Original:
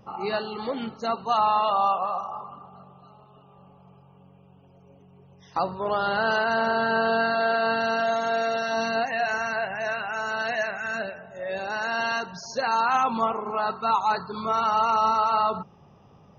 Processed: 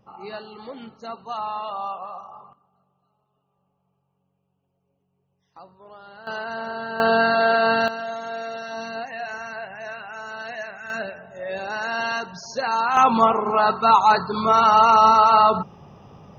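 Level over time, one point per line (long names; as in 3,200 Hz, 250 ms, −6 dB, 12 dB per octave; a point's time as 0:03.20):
−7.5 dB
from 0:02.53 −19.5 dB
from 0:06.27 −7 dB
from 0:07.00 +5 dB
from 0:07.88 −6 dB
from 0:10.90 +1 dB
from 0:12.97 +8 dB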